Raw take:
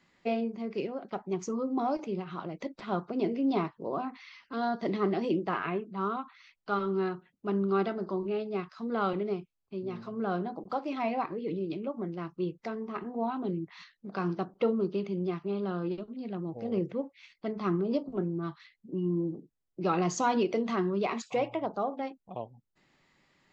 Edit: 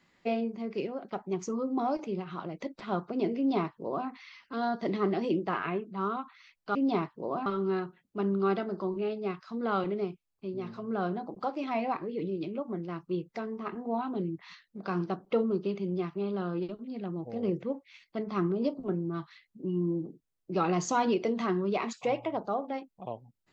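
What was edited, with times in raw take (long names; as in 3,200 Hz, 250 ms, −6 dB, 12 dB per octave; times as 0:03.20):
0:03.37–0:04.08: duplicate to 0:06.75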